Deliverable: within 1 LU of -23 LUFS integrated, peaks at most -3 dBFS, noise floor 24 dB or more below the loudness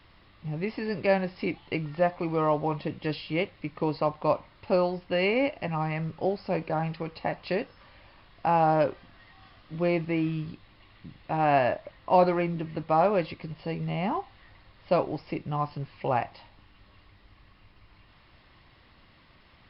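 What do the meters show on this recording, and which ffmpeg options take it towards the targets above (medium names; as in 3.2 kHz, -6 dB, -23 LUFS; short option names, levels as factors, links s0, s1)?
loudness -28.5 LUFS; peak level -9.0 dBFS; loudness target -23.0 LUFS
-> -af "volume=1.88"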